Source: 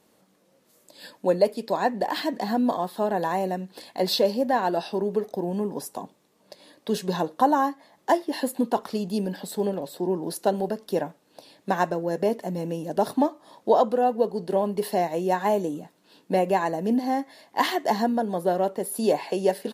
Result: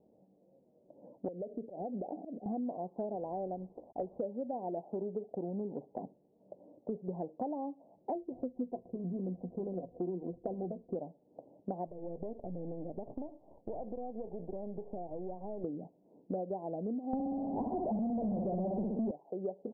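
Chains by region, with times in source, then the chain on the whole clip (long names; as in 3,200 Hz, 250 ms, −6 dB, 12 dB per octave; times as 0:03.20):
0:01.28–0:02.46: Butterworth low-pass 790 Hz 48 dB per octave + downward compressor 10 to 1, threshold −29 dBFS + volume swells 110 ms
0:03.15–0:04.19: low-shelf EQ 180 Hz −9 dB + log-companded quantiser 4 bits
0:08.14–0:10.95: running median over 41 samples + EQ curve with evenly spaced ripples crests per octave 2, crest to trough 13 dB
0:11.87–0:15.64: gain on one half-wave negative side −12 dB + downward compressor 4 to 1, threshold −33 dBFS
0:17.13–0:19.11: hollow resonant body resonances 210/2,600 Hz, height 16 dB, ringing for 80 ms + flutter between parallel walls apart 10.5 metres, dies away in 0.74 s + power curve on the samples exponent 0.35
whole clip: Butterworth low-pass 760 Hz 48 dB per octave; downward compressor 6 to 1, threshold −33 dBFS; level −2 dB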